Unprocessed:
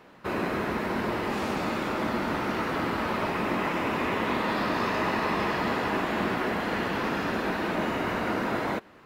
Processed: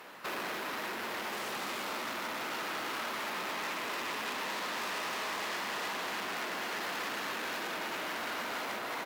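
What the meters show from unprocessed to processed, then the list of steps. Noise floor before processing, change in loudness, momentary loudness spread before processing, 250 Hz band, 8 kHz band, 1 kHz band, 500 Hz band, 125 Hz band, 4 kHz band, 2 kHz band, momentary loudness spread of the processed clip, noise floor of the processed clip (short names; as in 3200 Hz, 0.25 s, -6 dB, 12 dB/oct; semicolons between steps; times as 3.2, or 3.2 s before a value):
-52 dBFS, -7.5 dB, 2 LU, -16.5 dB, +4.5 dB, -8.0 dB, -11.5 dB, -21.0 dB, -0.5 dB, -5.0 dB, 2 LU, -39 dBFS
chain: soft clip -27 dBFS, distortion -12 dB; tapped delay 0.229/0.294 s -6.5/-4 dB; compressor 3:1, threshold -36 dBFS, peak gain reduction 8 dB; sine folder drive 8 dB, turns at -25.5 dBFS; HPF 910 Hz 6 dB/oct; high shelf 9700 Hz +11.5 dB; gain -5 dB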